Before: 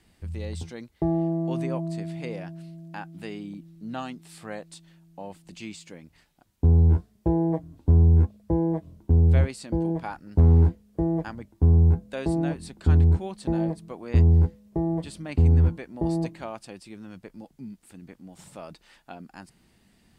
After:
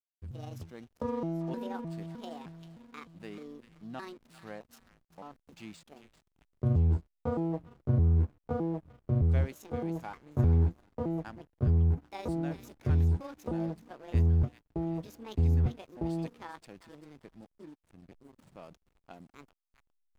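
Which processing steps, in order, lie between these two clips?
pitch shift switched off and on +6.5 st, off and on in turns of 307 ms; feedback echo behind a high-pass 394 ms, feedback 53%, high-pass 1.7 kHz, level -7 dB; hysteresis with a dead band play -41 dBFS; trim -7.5 dB

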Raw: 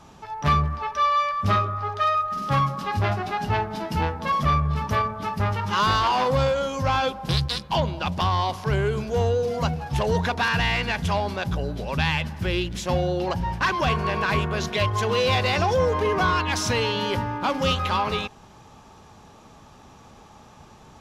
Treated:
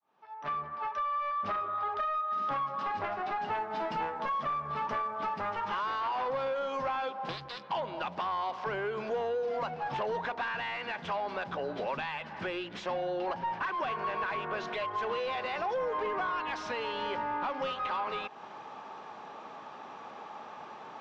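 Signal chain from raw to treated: fade-in on the opening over 2.63 s; high-pass 170 Hz 12 dB/octave; bass shelf 350 Hz -8.5 dB; compression, threshold -35 dBFS, peak gain reduction 15.5 dB; overdrive pedal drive 17 dB, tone 1.3 kHz, clips at -20 dBFS; 3.45–5.69 s: short-mantissa float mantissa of 4-bit; distance through air 140 m

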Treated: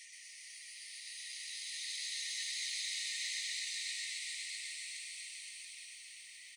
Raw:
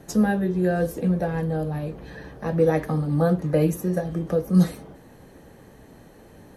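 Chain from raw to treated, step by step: comb filter that takes the minimum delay 4.9 ms; FFT band-pass 1.8–10 kHz; Paulstretch 18×, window 0.25 s, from 4.48 s; reverse; upward compressor, threshold -52 dBFS; reverse; reverb removal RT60 0.51 s; modulation noise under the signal 29 dB; on a send: frequency-shifting echo 124 ms, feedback 52%, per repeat +110 Hz, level -3 dB; on the sum: bit-crushed delay 140 ms, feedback 80%, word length 12-bit, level -9 dB; trim +1 dB

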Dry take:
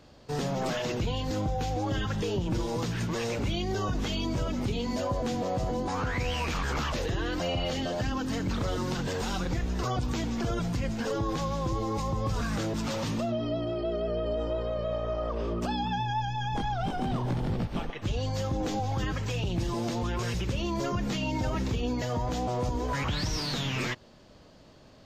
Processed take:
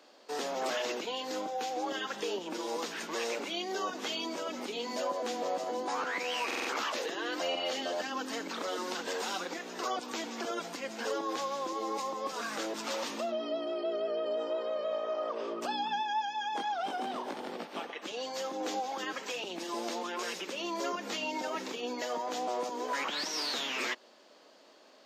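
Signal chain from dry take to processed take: Bessel high-pass 440 Hz, order 8; buffer glitch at 6.46 s, samples 2048, times 4

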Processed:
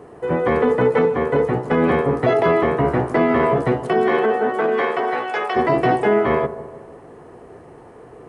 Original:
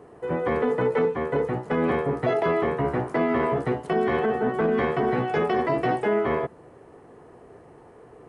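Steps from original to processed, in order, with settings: 3.86–5.55 s: high-pass 220 Hz -> 830 Hz 12 dB/octave; feedback echo behind a low-pass 156 ms, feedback 49%, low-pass 1.1 kHz, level -13.5 dB; trim +6.5 dB

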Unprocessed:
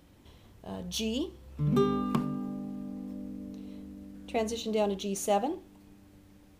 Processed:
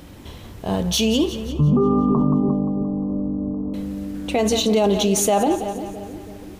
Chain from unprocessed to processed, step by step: 1.52–3.74 s: steep low-pass 1.2 kHz 72 dB/octave; two-band feedback delay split 490 Hz, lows 330 ms, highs 175 ms, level -15 dB; loudness maximiser +26 dB; trim -9 dB

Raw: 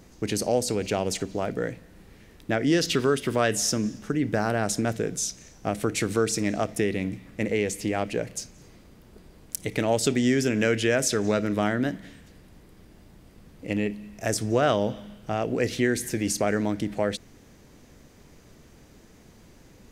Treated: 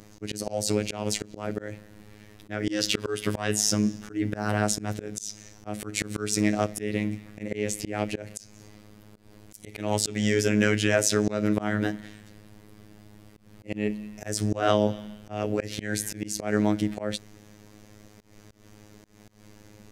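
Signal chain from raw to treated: robot voice 105 Hz; slow attack 174 ms; trim +3.5 dB

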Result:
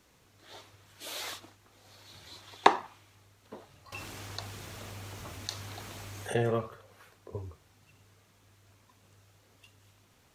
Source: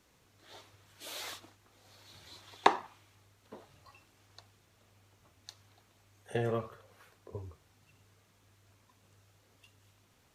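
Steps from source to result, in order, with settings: 3.92–6.43 s: level flattener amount 50%; trim +3.5 dB

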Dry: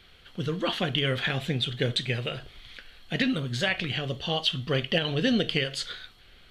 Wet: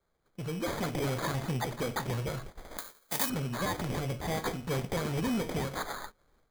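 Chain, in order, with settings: in parallel at +1.5 dB: compression, threshold -36 dBFS, peak gain reduction 15 dB; on the sum: flange 1.1 Hz, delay 3.7 ms, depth 2.7 ms, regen -64%; sample-and-hold 16×; saturation -27 dBFS, distortion -11 dB; level rider gain up to 9.5 dB; 2.78–3.30 s: RIAA curve recording; gate -34 dBFS, range -17 dB; trim -9 dB

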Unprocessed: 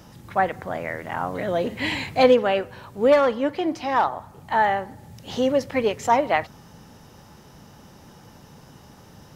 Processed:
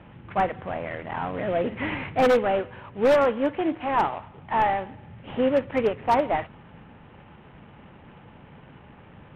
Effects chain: CVSD coder 16 kbps; distance through air 79 m; wavefolder -13 dBFS

